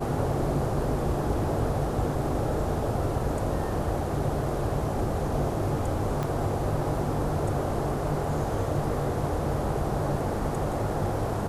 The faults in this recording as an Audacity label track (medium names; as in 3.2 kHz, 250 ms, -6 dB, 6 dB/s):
6.230000	6.230000	pop -17 dBFS